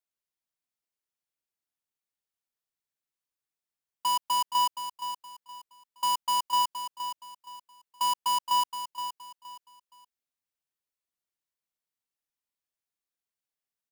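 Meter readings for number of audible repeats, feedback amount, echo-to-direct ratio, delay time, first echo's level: 3, 30%, −9.0 dB, 470 ms, −9.5 dB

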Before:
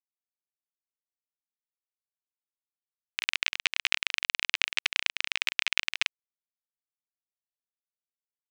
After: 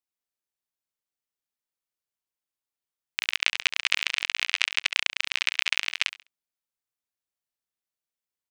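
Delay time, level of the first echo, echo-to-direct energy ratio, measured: 68 ms, −15.0 dB, −14.5 dB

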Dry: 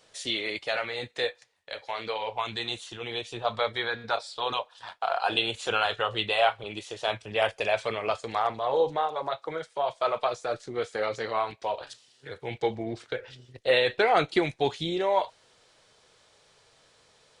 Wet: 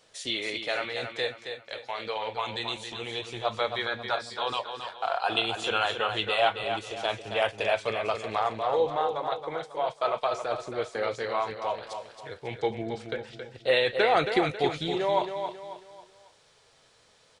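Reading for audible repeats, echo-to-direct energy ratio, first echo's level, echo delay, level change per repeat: 4, −7.0 dB, −7.5 dB, 272 ms, −8.5 dB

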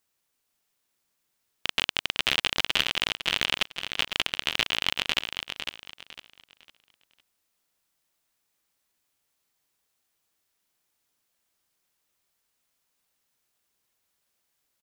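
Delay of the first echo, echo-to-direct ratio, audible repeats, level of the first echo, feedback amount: 504 ms, −7.0 dB, 3, −7.5 dB, 29%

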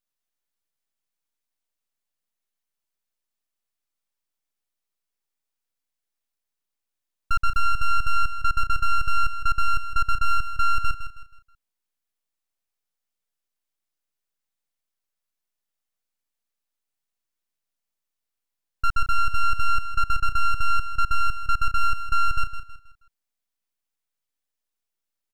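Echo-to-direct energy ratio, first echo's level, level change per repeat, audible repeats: −10.0 dB, −10.5 dB, −9.5 dB, 3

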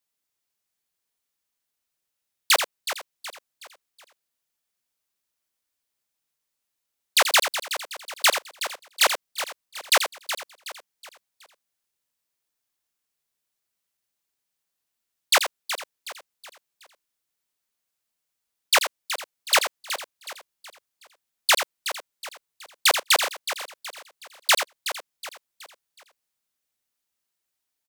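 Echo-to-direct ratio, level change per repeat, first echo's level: −6.5 dB, repeats not evenly spaced, −9.0 dB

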